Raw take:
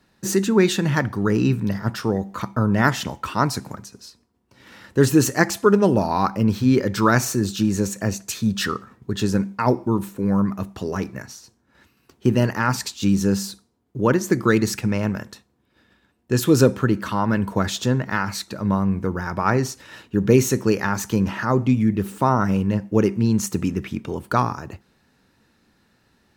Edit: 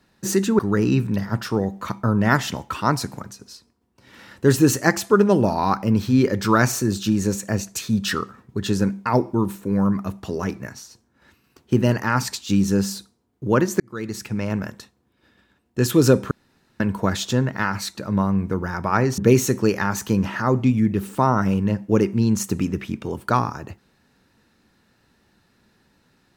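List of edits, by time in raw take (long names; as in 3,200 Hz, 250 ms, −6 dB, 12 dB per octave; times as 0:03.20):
0:00.59–0:01.12: remove
0:14.33–0:15.21: fade in
0:16.84–0:17.33: fill with room tone
0:19.71–0:20.21: remove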